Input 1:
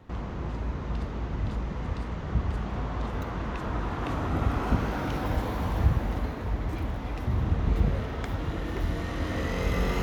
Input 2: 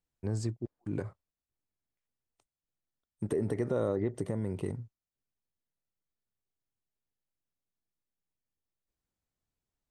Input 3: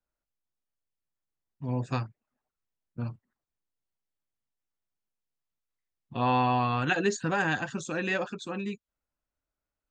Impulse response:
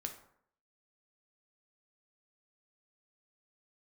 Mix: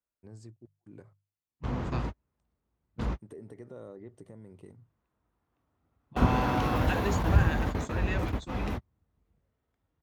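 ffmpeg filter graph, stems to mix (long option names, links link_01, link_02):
-filter_complex "[0:a]adelay=1500,volume=1.5dB[link_01];[1:a]bandreject=frequency=50:width_type=h:width=6,bandreject=frequency=100:width_type=h:width=6,bandreject=frequency=150:width_type=h:width=6,volume=-15dB[link_02];[2:a]volume=-7dB,asplit=2[link_03][link_04];[link_04]apad=whole_len=508395[link_05];[link_01][link_05]sidechaingate=range=-49dB:threshold=-44dB:ratio=16:detection=peak[link_06];[link_06][link_02][link_03]amix=inputs=3:normalize=0,highpass=45"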